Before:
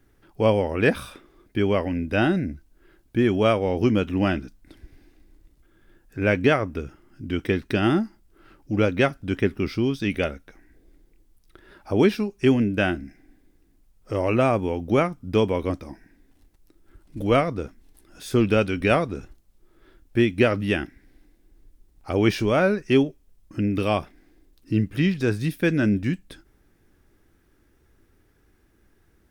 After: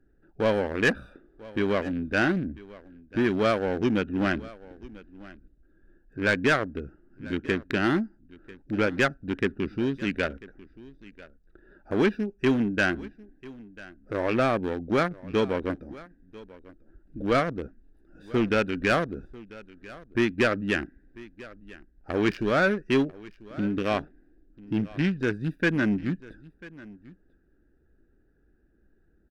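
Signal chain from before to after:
adaptive Wiener filter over 41 samples
graphic EQ with 15 bands 100 Hz −9 dB, 1,600 Hz +10 dB, 4,000 Hz +3 dB
soft clipping −13.5 dBFS, distortion −14 dB
on a send: single-tap delay 993 ms −20.5 dB
on the sum: level −1.5 dB

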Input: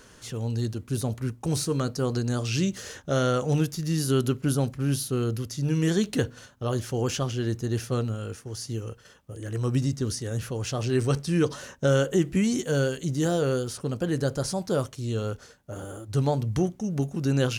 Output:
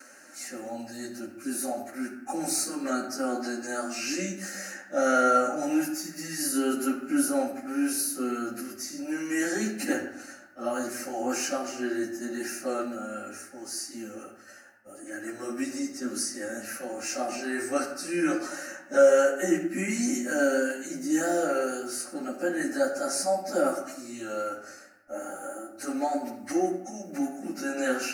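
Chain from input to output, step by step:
high-pass filter 410 Hz 12 dB per octave
noise gate with hold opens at −47 dBFS
phaser with its sweep stopped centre 680 Hz, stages 8
time stretch by phase vocoder 1.6×
convolution reverb RT60 0.85 s, pre-delay 4 ms, DRR 2.5 dB
level +7 dB

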